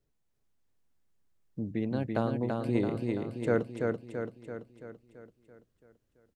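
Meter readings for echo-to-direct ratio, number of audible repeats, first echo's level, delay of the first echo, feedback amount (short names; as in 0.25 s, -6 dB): -2.0 dB, 7, -3.5 dB, 0.335 s, 55%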